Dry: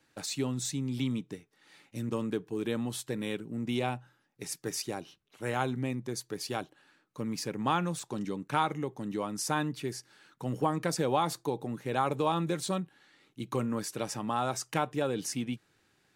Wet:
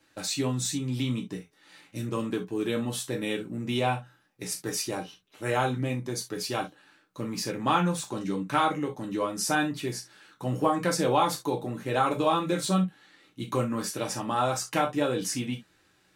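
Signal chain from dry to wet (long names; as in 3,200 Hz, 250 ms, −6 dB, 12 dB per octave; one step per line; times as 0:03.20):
reverb whose tail is shaped and stops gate 90 ms falling, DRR 0 dB
level +2 dB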